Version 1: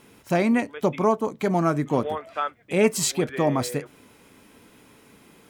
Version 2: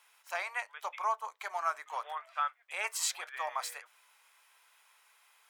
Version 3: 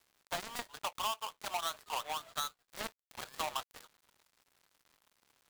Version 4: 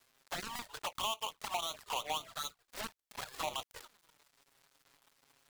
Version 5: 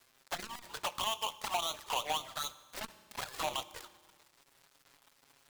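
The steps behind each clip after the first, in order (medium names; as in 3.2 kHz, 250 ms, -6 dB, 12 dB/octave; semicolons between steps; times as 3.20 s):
inverse Chebyshev high-pass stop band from 250 Hz, stop band 60 dB; dynamic bell 1.2 kHz, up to +4 dB, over -40 dBFS, Q 0.7; trim -8 dB
dead-time distortion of 0.25 ms; compression 3:1, threshold -42 dBFS, peak gain reduction 10.5 dB; trim +8 dB
peak limiter -27 dBFS, peak gain reduction 9.5 dB; touch-sensitive flanger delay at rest 7.9 ms, full sweep at -37 dBFS; trim +6 dB
reverberation RT60 1.5 s, pre-delay 3 ms, DRR 16 dB; transformer saturation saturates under 570 Hz; trim +3.5 dB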